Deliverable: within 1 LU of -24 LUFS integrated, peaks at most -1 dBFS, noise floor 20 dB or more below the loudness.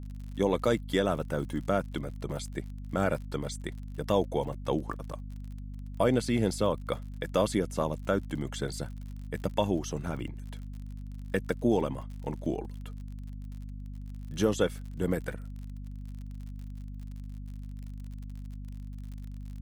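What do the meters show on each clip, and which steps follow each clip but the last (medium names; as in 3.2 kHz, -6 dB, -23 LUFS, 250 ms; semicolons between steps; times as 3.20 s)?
tick rate 51 per s; hum 50 Hz; highest harmonic 250 Hz; hum level -37 dBFS; loudness -31.5 LUFS; peak level -12.5 dBFS; loudness target -24.0 LUFS
-> de-click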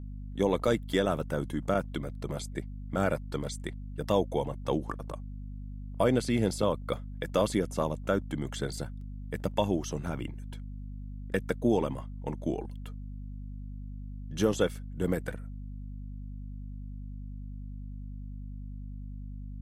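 tick rate 0.20 per s; hum 50 Hz; highest harmonic 250 Hz; hum level -37 dBFS
-> de-hum 50 Hz, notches 5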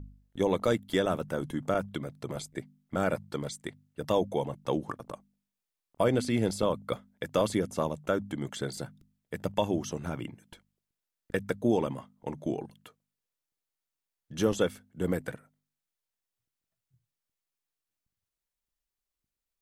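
hum not found; loudness -31.5 LUFS; peak level -12.5 dBFS; loudness target -24.0 LUFS
-> trim +7.5 dB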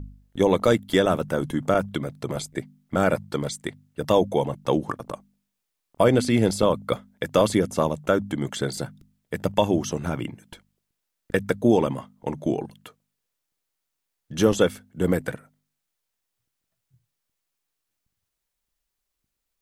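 loudness -24.0 LUFS; peak level -5.0 dBFS; noise floor -81 dBFS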